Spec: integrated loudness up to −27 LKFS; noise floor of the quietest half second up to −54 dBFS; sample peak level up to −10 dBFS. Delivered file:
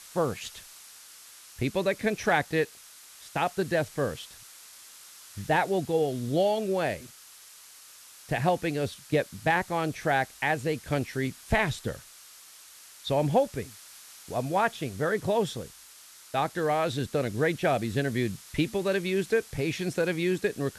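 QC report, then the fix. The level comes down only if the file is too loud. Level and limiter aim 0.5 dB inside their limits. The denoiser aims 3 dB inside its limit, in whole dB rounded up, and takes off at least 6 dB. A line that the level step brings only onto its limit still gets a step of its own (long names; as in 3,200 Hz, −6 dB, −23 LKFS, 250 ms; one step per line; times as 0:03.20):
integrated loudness −28.5 LKFS: in spec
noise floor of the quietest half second −51 dBFS: out of spec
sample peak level −12.5 dBFS: in spec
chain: broadband denoise 6 dB, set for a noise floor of −51 dBFS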